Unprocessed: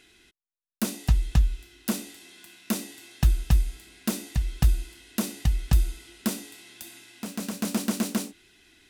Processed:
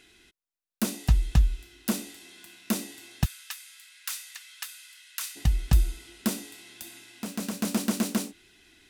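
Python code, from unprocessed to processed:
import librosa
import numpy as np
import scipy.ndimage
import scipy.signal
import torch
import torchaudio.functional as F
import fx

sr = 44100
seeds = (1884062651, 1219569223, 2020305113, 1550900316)

y = fx.highpass(x, sr, hz=1300.0, slope=24, at=(3.24, 5.35), fade=0.02)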